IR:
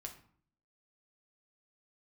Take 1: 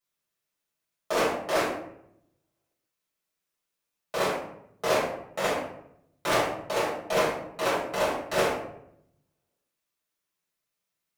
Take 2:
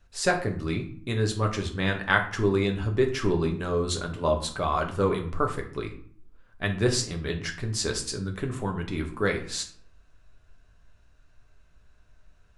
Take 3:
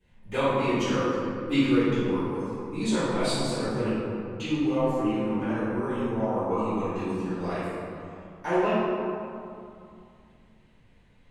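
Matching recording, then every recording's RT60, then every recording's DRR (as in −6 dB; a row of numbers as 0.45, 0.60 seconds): 2; 0.75, 0.55, 2.5 seconds; −9.0, 2.5, −19.5 decibels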